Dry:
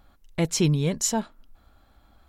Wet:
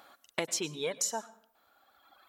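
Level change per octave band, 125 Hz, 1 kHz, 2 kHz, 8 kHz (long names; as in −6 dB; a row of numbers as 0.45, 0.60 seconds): −24.5, −5.5, −2.5, −5.5 decibels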